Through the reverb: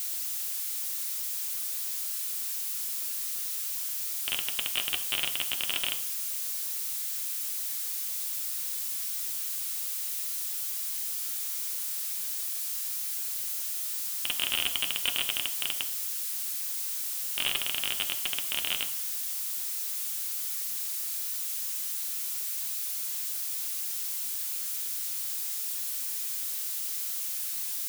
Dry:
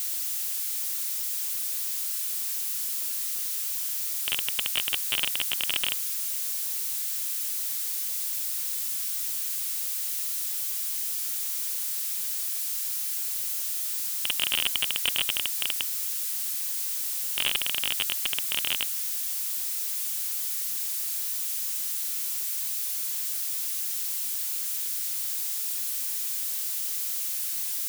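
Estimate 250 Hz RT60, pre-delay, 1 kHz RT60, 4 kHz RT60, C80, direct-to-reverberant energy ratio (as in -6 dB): 0.70 s, 3 ms, 0.55 s, 0.70 s, 15.0 dB, 4.5 dB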